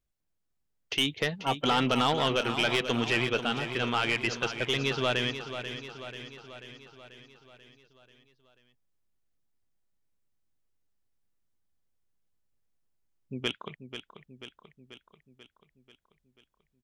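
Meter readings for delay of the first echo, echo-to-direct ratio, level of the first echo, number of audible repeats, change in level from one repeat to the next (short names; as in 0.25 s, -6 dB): 0.488 s, -8.0 dB, -10.0 dB, 6, -4.5 dB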